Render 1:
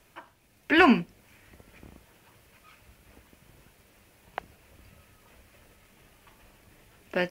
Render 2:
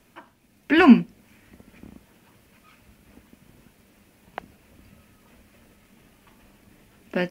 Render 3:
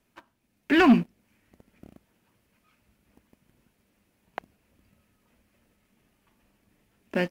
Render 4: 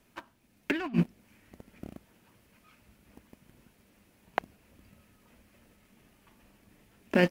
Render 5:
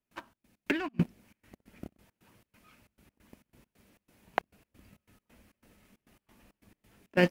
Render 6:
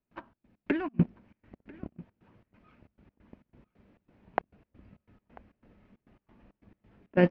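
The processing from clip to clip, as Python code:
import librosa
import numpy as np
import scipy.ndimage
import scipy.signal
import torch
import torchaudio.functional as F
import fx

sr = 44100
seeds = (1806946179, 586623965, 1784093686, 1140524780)

y1 = fx.peak_eq(x, sr, hz=230.0, db=10.0, octaves=0.86)
y2 = fx.leveller(y1, sr, passes=2)
y2 = y2 * 10.0 ** (-8.5 / 20.0)
y3 = fx.over_compress(y2, sr, threshold_db=-25.0, ratio=-0.5)
y4 = fx.step_gate(y3, sr, bpm=136, pattern='.xx.x.xx.xxx.x', floor_db=-24.0, edge_ms=4.5)
y5 = fx.spacing_loss(y4, sr, db_at_10k=41)
y5 = y5 + 10.0 ** (-22.0 / 20.0) * np.pad(y5, (int(992 * sr / 1000.0), 0))[:len(y5)]
y5 = y5 * 10.0 ** (4.0 / 20.0)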